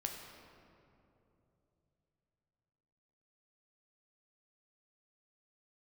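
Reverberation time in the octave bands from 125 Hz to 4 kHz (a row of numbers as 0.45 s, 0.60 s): 4.6 s, 3.6 s, 3.4 s, 2.6 s, 1.9 s, 1.4 s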